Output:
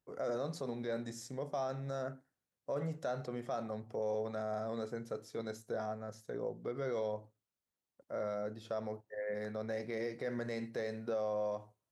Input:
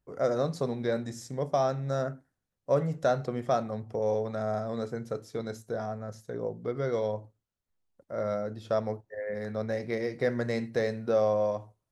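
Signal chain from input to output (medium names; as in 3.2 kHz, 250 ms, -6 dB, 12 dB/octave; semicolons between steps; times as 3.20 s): peak limiter -24.5 dBFS, peak gain reduction 10.5 dB; high-pass 190 Hz 6 dB/octave; trim -3.5 dB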